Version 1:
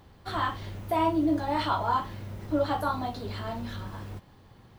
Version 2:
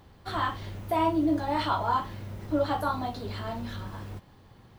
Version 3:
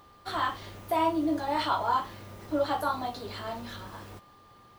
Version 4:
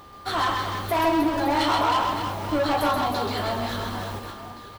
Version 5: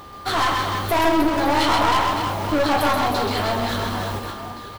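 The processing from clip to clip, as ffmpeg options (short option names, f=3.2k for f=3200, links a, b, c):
-af anull
-af "bass=f=250:g=-9,treble=f=4k:g=3,aeval=exprs='val(0)+0.00158*sin(2*PI*1200*n/s)':c=same"
-filter_complex "[0:a]asoftclip=type=tanh:threshold=-28.5dB,asplit=2[a][b];[b]aecho=0:1:130|312|566.8|923.5|1423:0.631|0.398|0.251|0.158|0.1[c];[a][c]amix=inputs=2:normalize=0,volume=9dB"
-af "aeval=exprs='clip(val(0),-1,0.0398)':c=same,volume=6dB"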